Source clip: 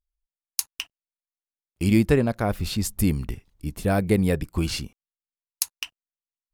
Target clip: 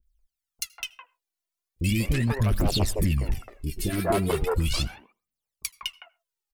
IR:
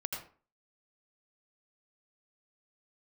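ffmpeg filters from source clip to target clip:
-filter_complex "[0:a]acrossover=split=950|3700[s0][s1][s2];[s0]acompressor=threshold=0.112:ratio=4[s3];[s1]acompressor=threshold=0.02:ratio=4[s4];[s2]acompressor=threshold=0.0112:ratio=4[s5];[s3][s4][s5]amix=inputs=3:normalize=0,aphaser=in_gain=1:out_gain=1:delay=3.1:decay=0.8:speed=0.38:type=triangular,aeval=exprs='0.355*sin(PI/2*2.24*val(0)/0.355)':c=same,acrossover=split=400|1700[s6][s7][s8];[s8]adelay=30[s9];[s7]adelay=190[s10];[s6][s10][s9]amix=inputs=3:normalize=0,asplit=2[s11][s12];[1:a]atrim=start_sample=2205,atrim=end_sample=6615[s13];[s12][s13]afir=irnorm=-1:irlink=0,volume=0.0891[s14];[s11][s14]amix=inputs=2:normalize=0,volume=0.355"

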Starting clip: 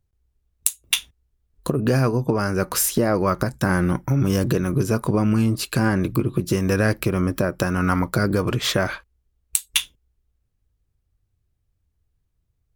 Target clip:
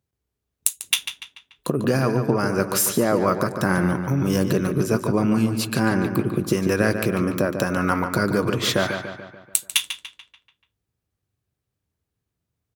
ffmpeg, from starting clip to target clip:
-filter_complex "[0:a]highpass=140,asplit=2[s0][s1];[s1]adelay=145,lowpass=f=4100:p=1,volume=0.422,asplit=2[s2][s3];[s3]adelay=145,lowpass=f=4100:p=1,volume=0.53,asplit=2[s4][s5];[s5]adelay=145,lowpass=f=4100:p=1,volume=0.53,asplit=2[s6][s7];[s7]adelay=145,lowpass=f=4100:p=1,volume=0.53,asplit=2[s8][s9];[s9]adelay=145,lowpass=f=4100:p=1,volume=0.53,asplit=2[s10][s11];[s11]adelay=145,lowpass=f=4100:p=1,volume=0.53[s12];[s2][s4][s6][s8][s10][s12]amix=inputs=6:normalize=0[s13];[s0][s13]amix=inputs=2:normalize=0"

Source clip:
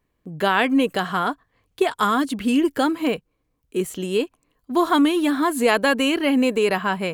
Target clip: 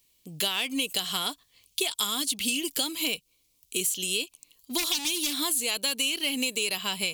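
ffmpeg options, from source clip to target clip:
-filter_complex "[0:a]asplit=3[s0][s1][s2];[s0]afade=t=out:st=4.77:d=0.02[s3];[s1]aeval=exprs='0.15*(abs(mod(val(0)/0.15+3,4)-2)-1)':c=same,afade=t=in:st=4.77:d=0.02,afade=t=out:st=5.34:d=0.02[s4];[s2]afade=t=in:st=5.34:d=0.02[s5];[s3][s4][s5]amix=inputs=3:normalize=0,aexciter=amount=6.7:drive=9.9:freq=2500,acompressor=threshold=0.141:ratio=6,volume=0.398"

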